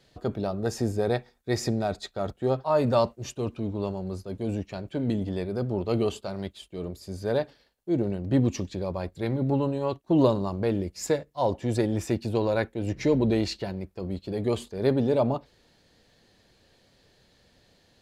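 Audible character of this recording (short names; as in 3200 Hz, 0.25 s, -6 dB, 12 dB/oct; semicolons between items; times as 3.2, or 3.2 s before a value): noise floor -64 dBFS; spectral tilt -7.0 dB/oct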